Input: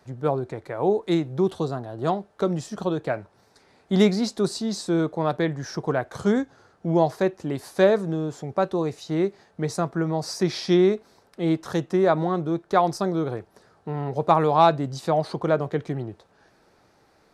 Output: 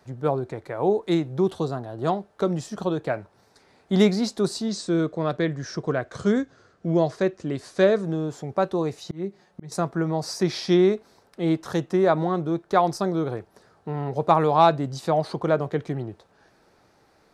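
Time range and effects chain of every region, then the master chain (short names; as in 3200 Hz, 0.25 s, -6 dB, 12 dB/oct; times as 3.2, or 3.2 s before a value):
4.68–8.03 LPF 8700 Hz 24 dB/oct + bell 850 Hz -10.5 dB 0.32 oct
9.04–9.72 dynamic EQ 190 Hz, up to +7 dB, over -38 dBFS, Q 1.1 + comb 5.5 ms, depth 53% + auto swell 0.559 s
whole clip: dry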